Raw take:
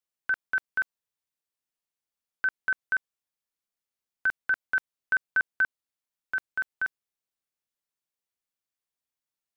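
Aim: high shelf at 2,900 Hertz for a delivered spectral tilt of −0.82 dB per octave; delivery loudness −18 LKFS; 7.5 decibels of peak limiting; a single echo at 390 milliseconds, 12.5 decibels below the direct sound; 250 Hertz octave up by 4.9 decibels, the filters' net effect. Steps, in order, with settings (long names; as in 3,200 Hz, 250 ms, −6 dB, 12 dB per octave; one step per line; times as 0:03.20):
parametric band 250 Hz +6.5 dB
high-shelf EQ 2,900 Hz −8 dB
brickwall limiter −26.5 dBFS
single-tap delay 390 ms −12.5 dB
level +18.5 dB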